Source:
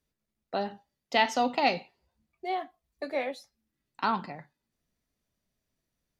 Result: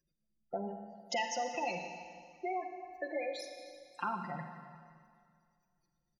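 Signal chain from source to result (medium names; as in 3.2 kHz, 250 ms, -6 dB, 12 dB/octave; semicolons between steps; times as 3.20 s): spectral gate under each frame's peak -15 dB strong; pre-emphasis filter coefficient 0.8; comb 5.7 ms, depth 93%; compression 4:1, threshold -46 dBFS, peak gain reduction 16 dB; Schroeder reverb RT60 2.1 s, DRR 5 dB; trim +11 dB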